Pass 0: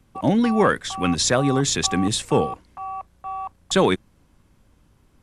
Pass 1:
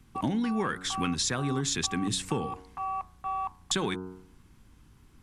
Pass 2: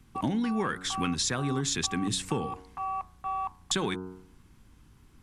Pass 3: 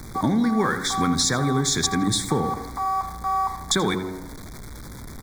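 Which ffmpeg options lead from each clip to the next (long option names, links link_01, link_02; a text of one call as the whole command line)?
ffmpeg -i in.wav -af "equalizer=frequency=580:width=2.4:gain=-11.5,bandreject=frequency=92.7:width_type=h:width=4,bandreject=frequency=185.4:width_type=h:width=4,bandreject=frequency=278.1:width_type=h:width=4,bandreject=frequency=370.8:width_type=h:width=4,bandreject=frequency=463.5:width_type=h:width=4,bandreject=frequency=556.2:width_type=h:width=4,bandreject=frequency=648.9:width_type=h:width=4,bandreject=frequency=741.6:width_type=h:width=4,bandreject=frequency=834.3:width_type=h:width=4,bandreject=frequency=927:width_type=h:width=4,bandreject=frequency=1019.7:width_type=h:width=4,bandreject=frequency=1112.4:width_type=h:width=4,bandreject=frequency=1205.1:width_type=h:width=4,bandreject=frequency=1297.8:width_type=h:width=4,bandreject=frequency=1390.5:width_type=h:width=4,bandreject=frequency=1483.2:width_type=h:width=4,bandreject=frequency=1575.9:width_type=h:width=4,acompressor=threshold=-28dB:ratio=6,volume=1.5dB" out.wav
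ffmpeg -i in.wav -af anull out.wav
ffmpeg -i in.wav -filter_complex "[0:a]aeval=exprs='val(0)+0.5*0.00944*sgn(val(0))':channel_layout=same,asuperstop=centerf=2800:order=12:qfactor=2.8,asplit=2[link_01][link_02];[link_02]adelay=83,lowpass=frequency=3300:poles=1,volume=-11.5dB,asplit=2[link_03][link_04];[link_04]adelay=83,lowpass=frequency=3300:poles=1,volume=0.55,asplit=2[link_05][link_06];[link_06]adelay=83,lowpass=frequency=3300:poles=1,volume=0.55,asplit=2[link_07][link_08];[link_08]adelay=83,lowpass=frequency=3300:poles=1,volume=0.55,asplit=2[link_09][link_10];[link_10]adelay=83,lowpass=frequency=3300:poles=1,volume=0.55,asplit=2[link_11][link_12];[link_12]adelay=83,lowpass=frequency=3300:poles=1,volume=0.55[link_13];[link_01][link_03][link_05][link_07][link_09][link_11][link_13]amix=inputs=7:normalize=0,volume=6.5dB" out.wav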